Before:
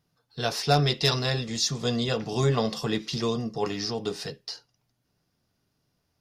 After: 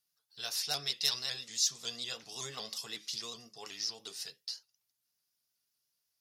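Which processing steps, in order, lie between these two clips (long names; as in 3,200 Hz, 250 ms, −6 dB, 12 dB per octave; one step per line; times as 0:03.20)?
first-order pre-emphasis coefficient 0.97
pitch modulation by a square or saw wave saw up 5.4 Hz, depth 100 cents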